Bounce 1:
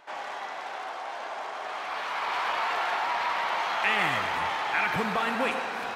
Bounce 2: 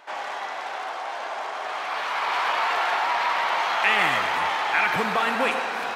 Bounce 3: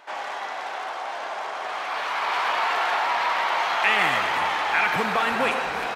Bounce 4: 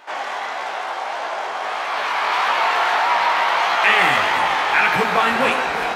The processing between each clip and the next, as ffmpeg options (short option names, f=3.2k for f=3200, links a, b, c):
-af "lowshelf=f=170:g=-10.5,volume=5dB"
-filter_complex "[0:a]asplit=7[a][b][c][d][e][f][g];[b]adelay=351,afreqshift=-69,volume=-15dB[h];[c]adelay=702,afreqshift=-138,volume=-19.7dB[i];[d]adelay=1053,afreqshift=-207,volume=-24.5dB[j];[e]adelay=1404,afreqshift=-276,volume=-29.2dB[k];[f]adelay=1755,afreqshift=-345,volume=-33.9dB[l];[g]adelay=2106,afreqshift=-414,volume=-38.7dB[m];[a][h][i][j][k][l][m]amix=inputs=7:normalize=0"
-af "flanger=delay=15.5:depth=7:speed=1.6,volume=8.5dB"